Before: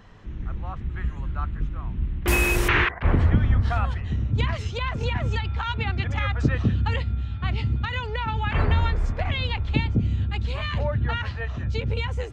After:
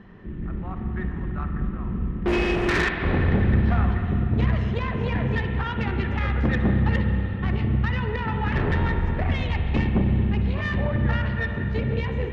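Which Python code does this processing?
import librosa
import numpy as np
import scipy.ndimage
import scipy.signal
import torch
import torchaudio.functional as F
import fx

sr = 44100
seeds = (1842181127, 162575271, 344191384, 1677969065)

y = scipy.signal.sosfilt(scipy.signal.butter(2, 2800.0, 'lowpass', fs=sr, output='sos'), x)
y = fx.peak_eq(y, sr, hz=200.0, db=12.0, octaves=0.68)
y = fx.small_body(y, sr, hz=(370.0, 1800.0), ring_ms=45, db=11)
y = fx.tube_stage(y, sr, drive_db=18.0, bias=0.45)
y = fx.rev_spring(y, sr, rt60_s=3.3, pass_ms=(46, 60), chirp_ms=25, drr_db=4.0)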